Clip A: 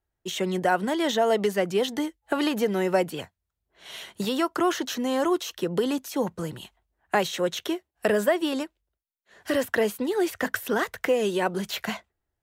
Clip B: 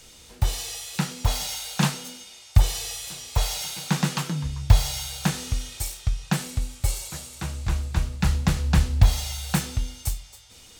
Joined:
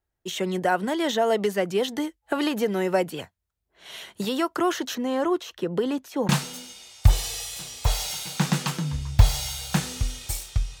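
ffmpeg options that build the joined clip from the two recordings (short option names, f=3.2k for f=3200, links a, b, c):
-filter_complex "[0:a]asettb=1/sr,asplit=3[a][b][c];[a]atrim=end=4.954[d];[b]atrim=start=4.95:end=6.29,asetpts=PTS-STARTPTS,afade=t=in:d=0.004:c=qsin,afade=t=out:st=1.336:d=0.004:c=qsin,highshelf=f=4.2k:g=-10[e];[c]atrim=start=6.286[f];[d][e]acrossfade=d=0.004:c1=hsin:c2=qsin[g];[g][f]acrossfade=d=0.004:c1=qsin:c2=hsin,apad=whole_dur=10.8,atrim=end=10.8,atrim=end=6.292[h];[1:a]atrim=start=1.798:end=6.31[i];[h][i]acrossfade=d=0.004:c1=hsin:c2=hsin"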